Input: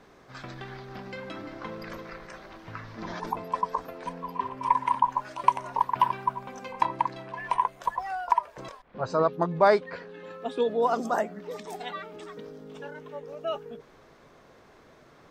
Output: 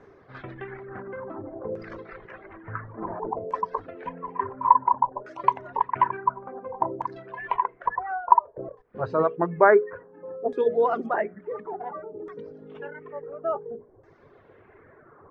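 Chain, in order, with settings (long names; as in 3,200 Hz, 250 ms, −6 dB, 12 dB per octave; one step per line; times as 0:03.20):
graphic EQ with 15 bands 100 Hz +11 dB, 400 Hz +10 dB, 2,500 Hz −5 dB
convolution reverb, pre-delay 24 ms, DRR 20 dB
reverb reduction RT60 0.92 s
auto-filter low-pass saw down 0.57 Hz 520–6,300 Hz
high shelf with overshoot 3,000 Hz −12 dB, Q 1.5
mains-hum notches 60/120/180/240/300/360/420/480 Hz
level −1.5 dB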